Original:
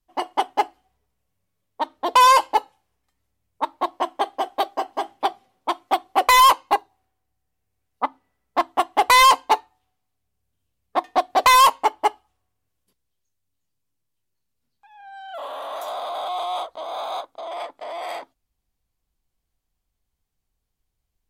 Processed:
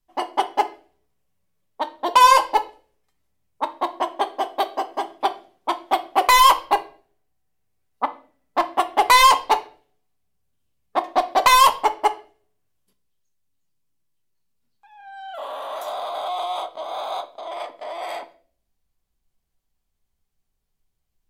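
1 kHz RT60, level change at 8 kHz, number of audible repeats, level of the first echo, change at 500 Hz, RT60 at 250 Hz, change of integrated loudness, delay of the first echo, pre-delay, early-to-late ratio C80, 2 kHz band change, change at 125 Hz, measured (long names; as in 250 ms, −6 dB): 0.40 s, +0.5 dB, no echo audible, no echo audible, +0.5 dB, 0.65 s, 0.0 dB, no echo audible, 5 ms, 20.0 dB, 0.0 dB, can't be measured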